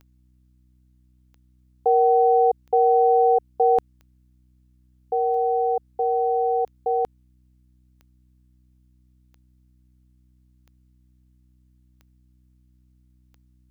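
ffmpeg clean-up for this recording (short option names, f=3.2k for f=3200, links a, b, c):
-af "adeclick=t=4,bandreject=f=62.4:t=h:w=4,bandreject=f=124.8:t=h:w=4,bandreject=f=187.2:t=h:w=4,bandreject=f=249.6:t=h:w=4,bandreject=f=312:t=h:w=4"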